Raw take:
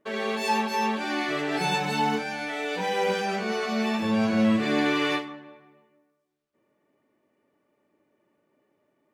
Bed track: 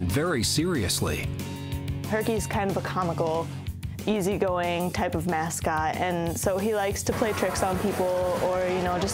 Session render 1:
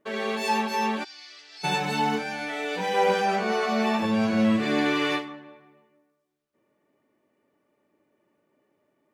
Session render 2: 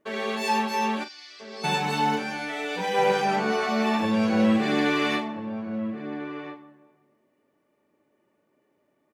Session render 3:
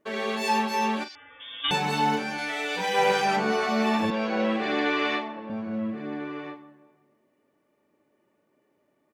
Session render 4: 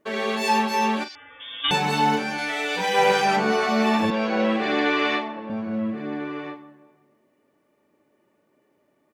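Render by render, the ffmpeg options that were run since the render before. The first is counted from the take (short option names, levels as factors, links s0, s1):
-filter_complex "[0:a]asplit=3[s0][s1][s2];[s0]afade=t=out:st=1.03:d=0.02[s3];[s1]bandpass=f=5000:t=q:w=4,afade=t=in:st=1.03:d=0.02,afade=t=out:st=1.63:d=0.02[s4];[s2]afade=t=in:st=1.63:d=0.02[s5];[s3][s4][s5]amix=inputs=3:normalize=0,asettb=1/sr,asplit=3[s6][s7][s8];[s6]atrim=end=2.944[s9];[s7]atrim=start=2.94:end=4.06,asetpts=PTS-STARTPTS,afade=t=in:d=0.004:c=qsin,afade=t=out:st=1.116:d=0.004:c=qsin,equalizer=f=830:t=o:w=1.6:g=6[s10];[s8]atrim=start=4.056[s11];[s9][s10]acrossfade=d=0.004:c1=hsin:c2=qsin[s12];[s12][s11]acrossfade=d=0.004:c1=qsin:c2=hsin"
-filter_complex "[0:a]asplit=2[s0][s1];[s1]adelay=40,volume=0.266[s2];[s0][s2]amix=inputs=2:normalize=0,asplit=2[s3][s4];[s4]adelay=1341,volume=0.355,highshelf=f=4000:g=-30.2[s5];[s3][s5]amix=inputs=2:normalize=0"
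-filter_complex "[0:a]asettb=1/sr,asplit=3[s0][s1][s2];[s0]atrim=end=1.154[s3];[s1]atrim=start=1.15:end=1.71,asetpts=PTS-STARTPTS,afade=t=in:d=0.004:c=qsin,afade=t=out:st=0.556:d=0.004:c=qsin,lowpass=f=3200:t=q:w=0.5098,lowpass=f=3200:t=q:w=0.6013,lowpass=f=3200:t=q:w=0.9,lowpass=f=3200:t=q:w=2.563,afreqshift=-3800[s4];[s2]atrim=start=1.706[s5];[s3][s4]acrossfade=d=0.004:c1=hsin:c2=qsin[s6];[s6][s5]acrossfade=d=0.004:c1=qsin:c2=hsin,asettb=1/sr,asplit=3[s7][s8][s9];[s7]atrim=end=2.384[s10];[s8]atrim=start=2.38:end=3.37,asetpts=PTS-STARTPTS,afade=t=in:d=0.004:c=qsin,afade=t=out:st=0.986:d=0.004:c=qsin,tiltshelf=f=760:g=-3.5[s11];[s9]atrim=start=3.366[s12];[s10][s11]acrossfade=d=0.004:c1=hsin:c2=qsin[s13];[s13][s12]acrossfade=d=0.004:c1=qsin:c2=hsin,asettb=1/sr,asplit=3[s14][s15][s16];[s14]atrim=end=4.104[s17];[s15]atrim=start=4.1:end=5.5,asetpts=PTS-STARTPTS,afade=t=in:d=0.004:c=qsin,afade=t=out:st=1.396:d=0.004:c=qsin,highpass=330,lowpass=4300[s18];[s16]atrim=start=5.496[s19];[s17][s18]acrossfade=d=0.004:c1=hsin:c2=qsin[s20];[s20][s19]acrossfade=d=0.004:c1=qsin:c2=hsin"
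-af "volume=1.5"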